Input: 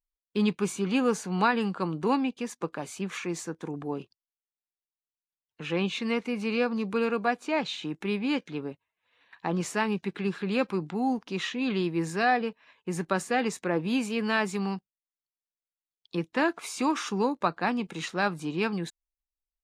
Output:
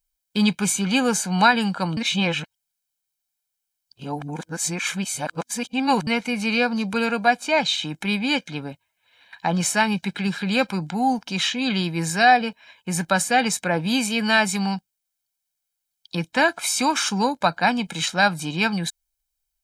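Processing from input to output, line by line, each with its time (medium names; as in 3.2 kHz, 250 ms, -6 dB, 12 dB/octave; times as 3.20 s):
1.97–6.07 s: reverse
whole clip: treble shelf 3.3 kHz +10 dB; comb 1.3 ms, depth 66%; trim +5 dB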